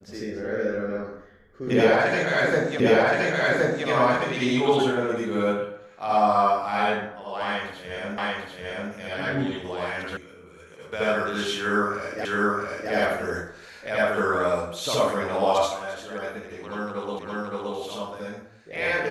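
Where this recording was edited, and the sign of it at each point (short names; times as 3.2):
2.8 repeat of the last 1.07 s
8.18 repeat of the last 0.74 s
10.17 sound cut off
12.25 repeat of the last 0.67 s
17.19 repeat of the last 0.57 s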